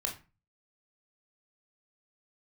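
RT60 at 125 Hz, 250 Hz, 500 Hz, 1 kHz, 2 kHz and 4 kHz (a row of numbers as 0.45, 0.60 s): 0.55, 0.45, 0.30, 0.30, 0.30, 0.25 s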